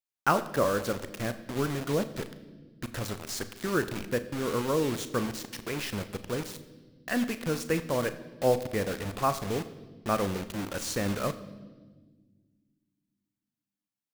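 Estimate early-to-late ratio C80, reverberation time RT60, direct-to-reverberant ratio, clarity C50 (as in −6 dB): 15.0 dB, non-exponential decay, 11.0 dB, 14.0 dB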